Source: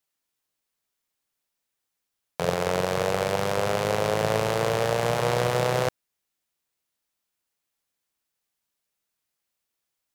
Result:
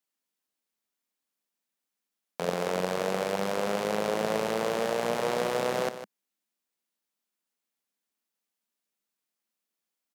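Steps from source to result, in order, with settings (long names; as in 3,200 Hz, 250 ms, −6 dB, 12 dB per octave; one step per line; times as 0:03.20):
low shelf with overshoot 160 Hz −8.5 dB, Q 3
single-tap delay 154 ms −11.5 dB
level −5 dB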